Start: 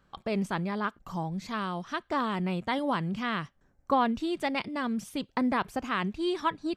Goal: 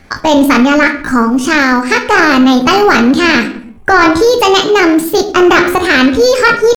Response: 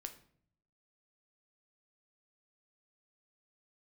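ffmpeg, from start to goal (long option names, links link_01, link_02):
-filter_complex "[1:a]atrim=start_sample=2205,afade=type=out:start_time=0.44:duration=0.01,atrim=end_sample=19845[link_01];[0:a][link_01]afir=irnorm=-1:irlink=0,apsyclip=30.5dB,asetrate=62367,aresample=44100,atempo=0.707107,volume=-2dB"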